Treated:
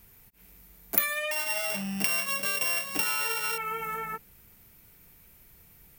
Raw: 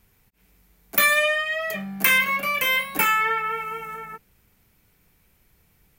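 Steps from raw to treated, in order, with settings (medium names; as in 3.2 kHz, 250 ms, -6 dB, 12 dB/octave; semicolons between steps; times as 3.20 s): 1.31–3.58 s: sorted samples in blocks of 16 samples; compression 6:1, threshold -32 dBFS, peak gain reduction 16.5 dB; treble shelf 11 kHz +11 dB; trim +2.5 dB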